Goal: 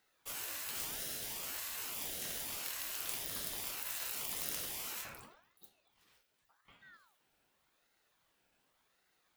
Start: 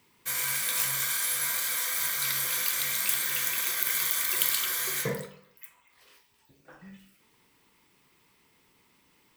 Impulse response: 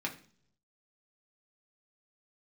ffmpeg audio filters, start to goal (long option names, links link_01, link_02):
-af "afftfilt=real='re*lt(hypot(re,im),0.0794)':imag='im*lt(hypot(re,im),0.0794)':win_size=1024:overlap=0.75,aeval=exprs='val(0)*sin(2*PI*1100*n/s+1100*0.6/0.88*sin(2*PI*0.88*n/s))':channel_layout=same,volume=-8.5dB"